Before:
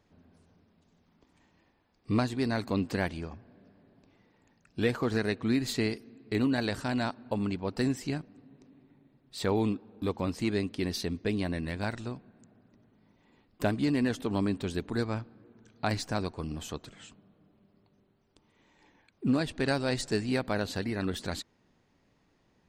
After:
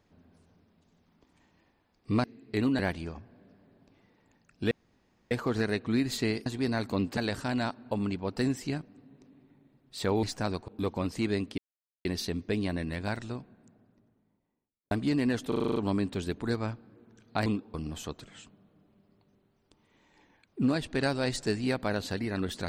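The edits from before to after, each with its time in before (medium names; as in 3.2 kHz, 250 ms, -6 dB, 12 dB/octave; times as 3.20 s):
2.24–2.95 s: swap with 6.02–6.57 s
4.87 s: insert room tone 0.60 s
9.63–9.91 s: swap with 15.94–16.39 s
10.81 s: insert silence 0.47 s
12.12–13.67 s: studio fade out
14.24 s: stutter 0.04 s, 8 plays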